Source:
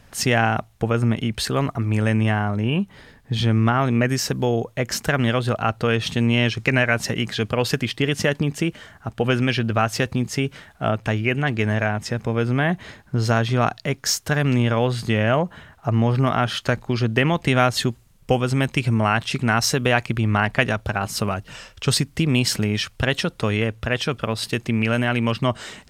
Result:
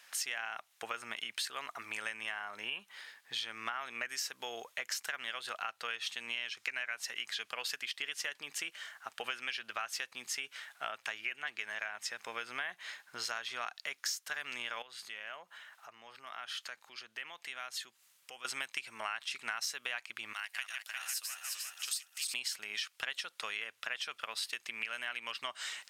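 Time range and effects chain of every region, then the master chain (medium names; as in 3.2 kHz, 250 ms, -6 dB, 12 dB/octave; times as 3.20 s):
14.82–18.45 s: compression 2:1, threshold -46 dBFS + high-pass 58 Hz
20.33–22.34 s: backward echo that repeats 177 ms, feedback 67%, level -5 dB + differentiator
whole clip: high-pass 1.5 kHz 12 dB/octave; compression 5:1, threshold -36 dBFS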